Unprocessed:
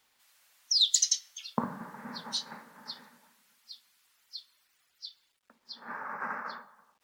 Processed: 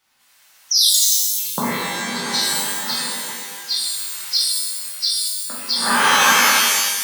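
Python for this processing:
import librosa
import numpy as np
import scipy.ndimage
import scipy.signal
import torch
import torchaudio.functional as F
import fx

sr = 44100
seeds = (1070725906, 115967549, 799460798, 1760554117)

y = fx.recorder_agc(x, sr, target_db=-13.0, rise_db_per_s=11.0, max_gain_db=30)
y = fx.rev_shimmer(y, sr, seeds[0], rt60_s=1.3, semitones=12, shimmer_db=-2, drr_db=-6.5)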